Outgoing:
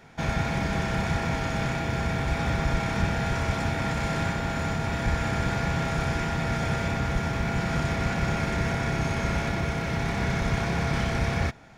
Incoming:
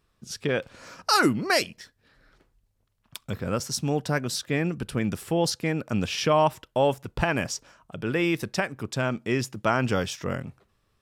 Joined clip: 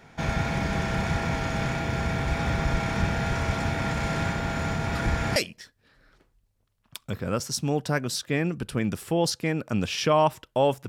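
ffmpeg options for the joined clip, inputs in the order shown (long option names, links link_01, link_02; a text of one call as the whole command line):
ffmpeg -i cue0.wav -i cue1.wav -filter_complex "[1:a]asplit=2[link_01][link_02];[0:a]apad=whole_dur=10.88,atrim=end=10.88,atrim=end=5.362[link_03];[link_02]atrim=start=1.558:end=7.08[link_04];[link_01]atrim=start=1.15:end=1.56,asetpts=PTS-STARTPTS,volume=-17.5dB,afade=type=in:duration=0.004:curve=hsin,afade=type=out:start_time=0.406:duration=0.004:curve=hsin,adelay=4950[link_05];[link_03][link_04]acrossfade=duration=0.004:curve1=hsin:curve2=hsin[link_06];[link_06][link_05]amix=inputs=2:normalize=0" out.wav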